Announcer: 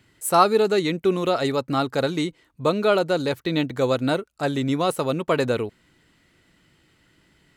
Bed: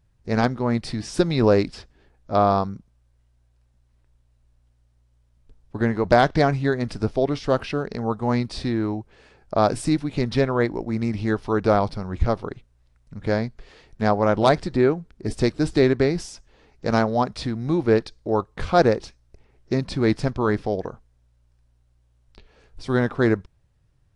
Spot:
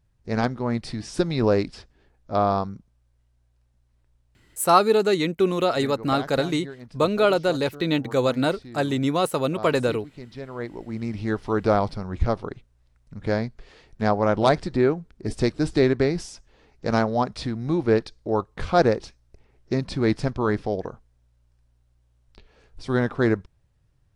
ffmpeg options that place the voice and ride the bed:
ffmpeg -i stem1.wav -i stem2.wav -filter_complex "[0:a]adelay=4350,volume=0dB[link_01];[1:a]volume=12.5dB,afade=type=out:start_time=4.52:duration=0.29:silence=0.199526,afade=type=in:start_time=10.4:duration=1.08:silence=0.16788[link_02];[link_01][link_02]amix=inputs=2:normalize=0" out.wav

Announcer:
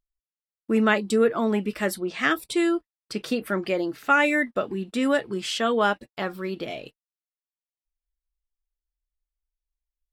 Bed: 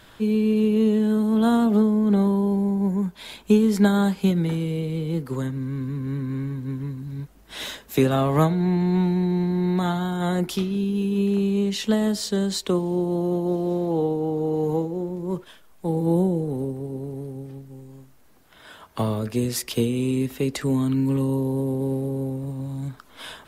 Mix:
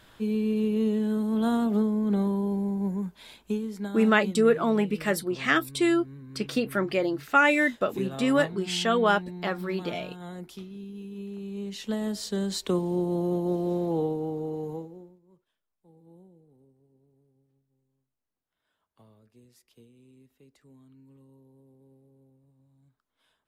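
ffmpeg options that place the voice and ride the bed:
ffmpeg -i stem1.wav -i stem2.wav -filter_complex "[0:a]adelay=3250,volume=-0.5dB[link_01];[1:a]volume=7dB,afade=type=out:start_time=2.87:duration=0.89:silence=0.298538,afade=type=in:start_time=11.39:duration=1.41:silence=0.223872,afade=type=out:start_time=13.87:duration=1.33:silence=0.0316228[link_02];[link_01][link_02]amix=inputs=2:normalize=0" out.wav

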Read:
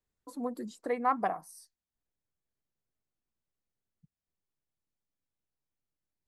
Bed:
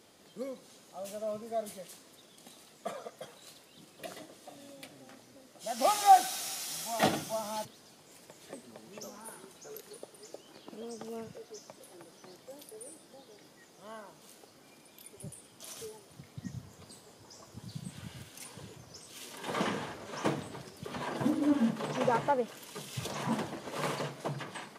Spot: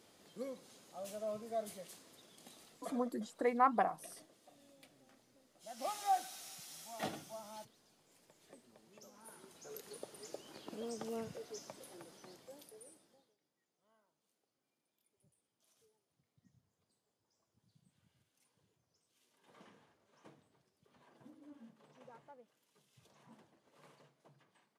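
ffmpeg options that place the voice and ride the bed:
ffmpeg -i stem1.wav -i stem2.wav -filter_complex "[0:a]adelay=2550,volume=-1.5dB[link_01];[1:a]volume=8.5dB,afade=type=out:start_time=2.64:duration=0.49:silence=0.354813,afade=type=in:start_time=9.11:duration=1.03:silence=0.223872,afade=type=out:start_time=11.69:duration=1.67:silence=0.0354813[link_02];[link_01][link_02]amix=inputs=2:normalize=0" out.wav

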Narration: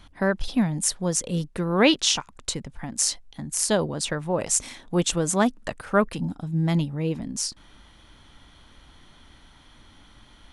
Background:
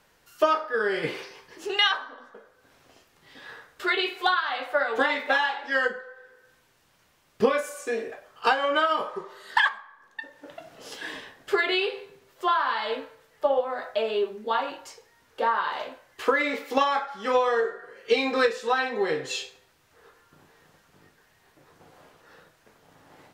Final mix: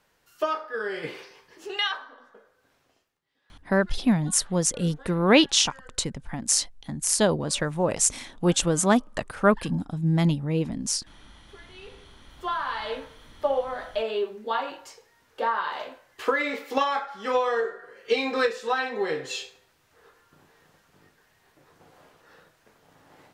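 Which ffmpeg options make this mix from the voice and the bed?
ffmpeg -i stem1.wav -i stem2.wav -filter_complex "[0:a]adelay=3500,volume=1dB[link_01];[1:a]volume=20.5dB,afade=type=out:start_time=2.53:duration=0.69:silence=0.0794328,afade=type=in:start_time=11.73:duration=1.32:silence=0.0530884[link_02];[link_01][link_02]amix=inputs=2:normalize=0" out.wav

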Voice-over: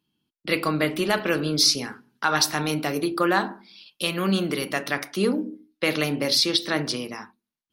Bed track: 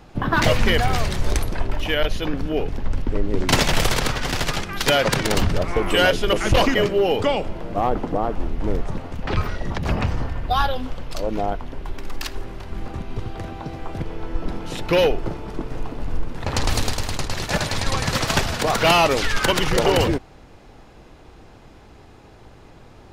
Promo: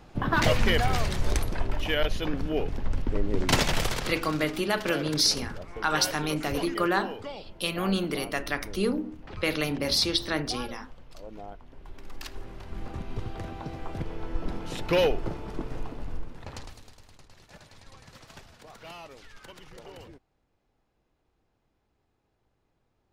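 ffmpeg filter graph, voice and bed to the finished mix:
ffmpeg -i stem1.wav -i stem2.wav -filter_complex "[0:a]adelay=3600,volume=-4dB[link_01];[1:a]volume=8dB,afade=type=out:start_time=3.51:duration=0.86:silence=0.211349,afade=type=in:start_time=11.66:duration=1.41:silence=0.223872,afade=type=out:start_time=15.68:duration=1.07:silence=0.0707946[link_02];[link_01][link_02]amix=inputs=2:normalize=0" out.wav

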